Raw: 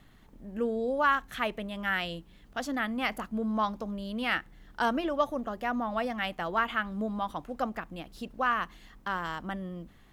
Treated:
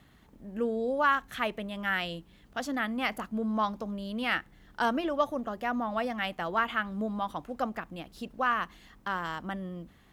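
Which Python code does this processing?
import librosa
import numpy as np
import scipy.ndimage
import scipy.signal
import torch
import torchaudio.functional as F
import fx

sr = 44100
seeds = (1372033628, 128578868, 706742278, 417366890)

y = scipy.signal.sosfilt(scipy.signal.butter(2, 46.0, 'highpass', fs=sr, output='sos'), x)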